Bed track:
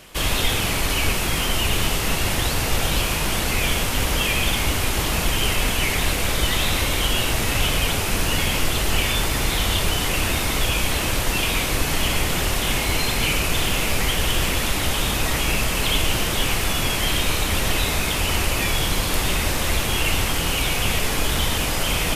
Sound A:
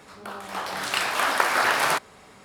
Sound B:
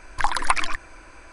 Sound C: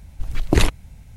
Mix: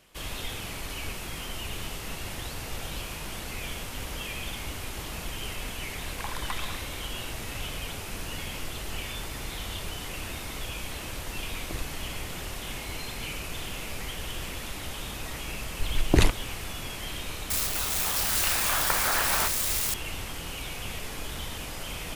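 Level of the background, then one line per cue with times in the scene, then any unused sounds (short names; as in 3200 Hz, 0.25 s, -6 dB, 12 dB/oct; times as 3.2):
bed track -14.5 dB
6 add B -17 dB + per-bin compression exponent 0.6
11.18 add C -5 dB + compressor, threshold -30 dBFS
15.61 add C -4 dB
17.5 add A -7.5 dB + switching spikes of -11 dBFS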